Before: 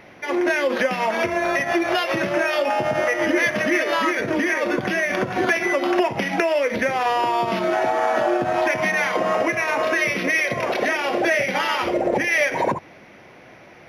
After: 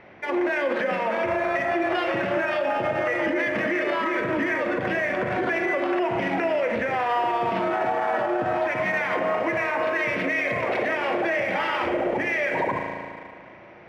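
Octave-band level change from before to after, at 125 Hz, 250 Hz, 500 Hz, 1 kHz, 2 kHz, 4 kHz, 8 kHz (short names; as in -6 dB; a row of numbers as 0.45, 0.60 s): -2.5 dB, -3.5 dB, -3.0 dB, -3.0 dB, -4.0 dB, -8.0 dB, under -15 dB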